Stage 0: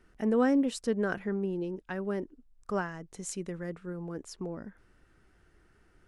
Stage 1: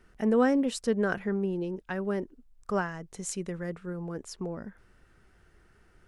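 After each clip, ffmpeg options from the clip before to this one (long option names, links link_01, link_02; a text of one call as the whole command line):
ffmpeg -i in.wav -af "equalizer=frequency=300:width_type=o:width=0.34:gain=-5,volume=3dB" out.wav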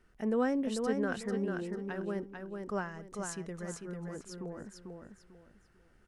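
ffmpeg -i in.wav -af "aecho=1:1:445|890|1335|1780:0.562|0.157|0.0441|0.0123,volume=-6.5dB" out.wav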